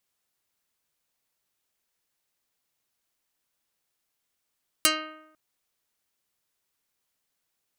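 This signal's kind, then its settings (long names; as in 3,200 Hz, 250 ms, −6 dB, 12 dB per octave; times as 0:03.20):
Karplus-Strong string D#4, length 0.50 s, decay 0.87 s, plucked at 0.37, dark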